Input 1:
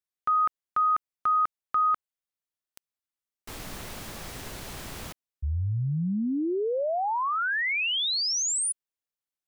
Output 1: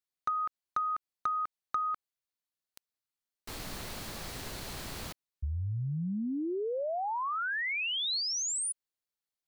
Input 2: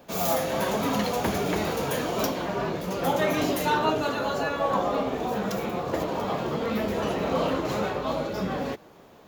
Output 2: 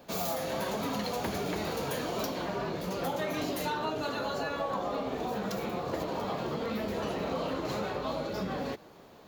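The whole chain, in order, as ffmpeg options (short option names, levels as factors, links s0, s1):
-af "equalizer=f=4300:w=4.5:g=5,acompressor=threshold=0.0316:ratio=6:attack=38:release=193:knee=6:detection=peak,asoftclip=type=hard:threshold=0.0891,volume=0.794"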